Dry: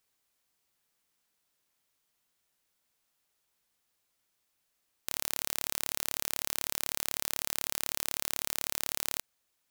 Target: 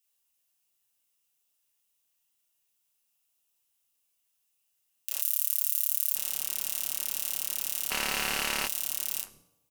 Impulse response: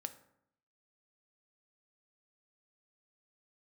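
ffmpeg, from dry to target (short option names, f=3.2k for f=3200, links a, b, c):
-filter_complex "[0:a]equalizer=f=2.8k:w=6.9:g=9.5,bandreject=f=4.4k:w=16,acrossover=split=350|1800[a][b][c];[b]adelay=40[d];[a]adelay=170[e];[e][d][c]amix=inputs=3:normalize=0,flanger=delay=3.2:depth=7.6:regen=-39:speed=2:shape=sinusoidal,bandreject=f=60:t=h:w=6,bandreject=f=120:t=h:w=6,bandreject=f=180:t=h:w=6,flanger=delay=7.5:depth=2:regen=-67:speed=0.32:shape=triangular,asplit=2[f][g];[1:a]atrim=start_sample=2205,asetrate=27342,aresample=44100,adelay=33[h];[g][h]afir=irnorm=-1:irlink=0,volume=-1dB[i];[f][i]amix=inputs=2:normalize=0,crystalizer=i=2:c=0,asettb=1/sr,asplit=3[j][k][l];[j]atrim=end=5.214[m];[k]atrim=start=5.21:end=6.16,asetpts=PTS-STARTPTS,afade=t=in:d=0.004:c=qsin,afade=t=out:st=0.946:d=0.004:c=qsin,aderivative[n];[l]atrim=start=6.156[o];[m][n]acrossfade=d=0.004:c1=hsin:c2=qsin[p];[p][o]acrossfade=d=0.004:c1=qsin:c2=hsin,asplit=3[q][r][s];[q]afade=t=out:st=7.9:d=0.02[t];[r]asplit=2[u][v];[v]highpass=f=720:p=1,volume=24dB,asoftclip=type=tanh:threshold=-3.5dB[w];[u][w]amix=inputs=2:normalize=0,lowpass=f=2.8k:p=1,volume=-6dB,afade=t=in:st=7.9:d=0.02,afade=t=out:st=8.66:d=0.02[x];[s]afade=t=in:st=8.66:d=0.02[y];[t][x][y]amix=inputs=3:normalize=0,volume=-1.5dB"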